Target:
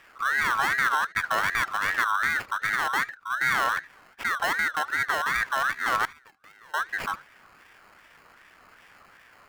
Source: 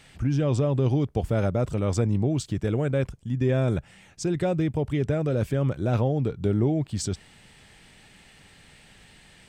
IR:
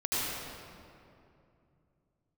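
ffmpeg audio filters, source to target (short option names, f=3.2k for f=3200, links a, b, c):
-filter_complex "[0:a]asettb=1/sr,asplit=3[a][b][c];[a]atrim=end=6.054[d];[b]atrim=start=6.05:end=6.74,asetpts=PTS-STARTPTS,afade=t=in:d=0.004:c=qsin,afade=t=out:st=0.686:d=0.004:c=qsin,aderivative[e];[c]atrim=start=6.736[f];[d][e]acrossfade=d=0.004:c1=hsin:c2=qsin[g];[g][f]acrossfade=d=0.004:c1=qsin:c2=hsin,acrusher=samples=19:mix=1:aa=0.000001,asplit=2[h][i];[1:a]atrim=start_sample=2205,atrim=end_sample=3528,lowpass=4.7k[j];[i][j]afir=irnorm=-1:irlink=0,volume=-15.5dB[k];[h][k]amix=inputs=2:normalize=0,aeval=exprs='val(0)*sin(2*PI*1500*n/s+1500*0.2/2.6*sin(2*PI*2.6*n/s))':c=same"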